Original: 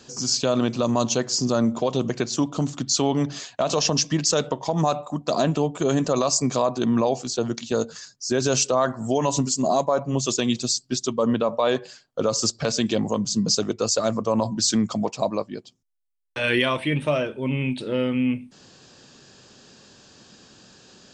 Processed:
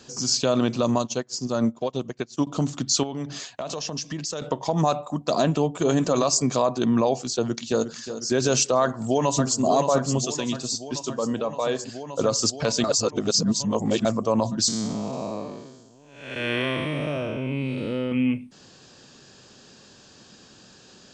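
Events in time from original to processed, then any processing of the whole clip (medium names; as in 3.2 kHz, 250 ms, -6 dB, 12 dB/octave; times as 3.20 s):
0.98–2.47 s: upward expansion 2.5:1, over -35 dBFS
3.03–4.42 s: compression 3:1, threshold -30 dBFS
5.53–5.97 s: echo throw 260 ms, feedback 20%, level -12 dB
7.31–7.97 s: echo throw 360 ms, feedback 60%, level -11 dB
8.81–9.61 s: echo throw 570 ms, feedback 80%, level -6.5 dB
10.25–11.79 s: feedback comb 160 Hz, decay 0.27 s, mix 50%
12.84–14.05 s: reverse
14.68–18.12 s: spectral blur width 320 ms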